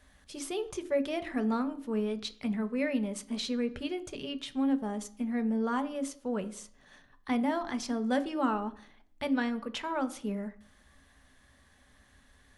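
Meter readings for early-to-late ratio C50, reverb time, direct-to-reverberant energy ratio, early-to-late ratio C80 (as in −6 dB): 16.5 dB, 0.55 s, 9.5 dB, 19.5 dB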